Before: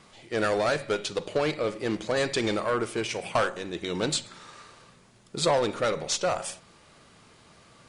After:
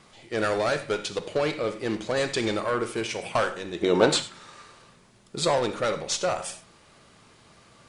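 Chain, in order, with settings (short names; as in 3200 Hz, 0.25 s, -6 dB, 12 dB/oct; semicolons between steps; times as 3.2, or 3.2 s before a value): 3.8–4.21 bell 390 Hz -> 1200 Hz +12.5 dB 2.8 oct; non-linear reverb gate 0.12 s flat, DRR 11 dB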